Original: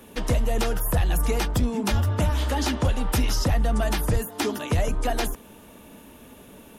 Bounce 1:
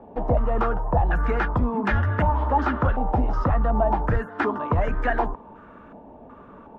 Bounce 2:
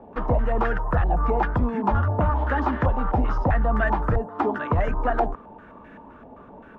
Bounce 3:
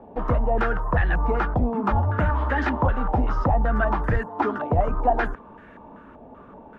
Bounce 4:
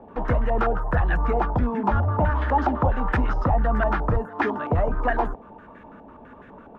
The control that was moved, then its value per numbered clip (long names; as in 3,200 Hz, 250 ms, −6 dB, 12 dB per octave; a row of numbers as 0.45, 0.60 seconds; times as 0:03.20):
low-pass on a step sequencer, speed: 2.7, 7.7, 5.2, 12 Hertz